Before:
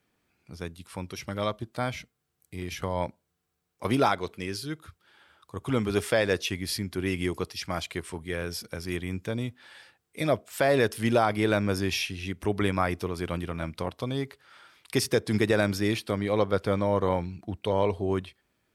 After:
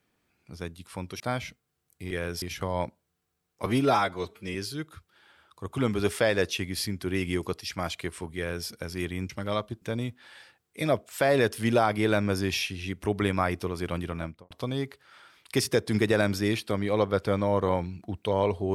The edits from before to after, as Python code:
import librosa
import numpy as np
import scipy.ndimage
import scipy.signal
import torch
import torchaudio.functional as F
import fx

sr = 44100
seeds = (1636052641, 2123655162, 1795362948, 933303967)

y = fx.studio_fade_out(x, sr, start_s=13.55, length_s=0.35)
y = fx.edit(y, sr, fx.move(start_s=1.2, length_s=0.52, to_s=9.21),
    fx.stretch_span(start_s=3.87, length_s=0.59, factor=1.5),
    fx.duplicate(start_s=8.28, length_s=0.31, to_s=2.63), tone=tone)